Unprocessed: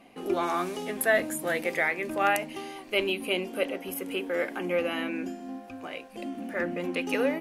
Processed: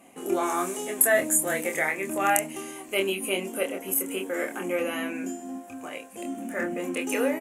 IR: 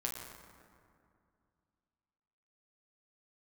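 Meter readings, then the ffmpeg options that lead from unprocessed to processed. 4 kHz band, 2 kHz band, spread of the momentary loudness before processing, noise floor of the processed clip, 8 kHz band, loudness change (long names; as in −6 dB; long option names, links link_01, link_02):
−1.0 dB, +0.5 dB, 13 LU, −45 dBFS, +13.0 dB, +2.5 dB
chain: -filter_complex "[0:a]highpass=frequency=110:poles=1,highshelf=frequency=5900:width_type=q:width=3:gain=8.5,asplit=2[link_01][link_02];[link_02]adelay=26,volume=-4.5dB[link_03];[link_01][link_03]amix=inputs=2:normalize=0"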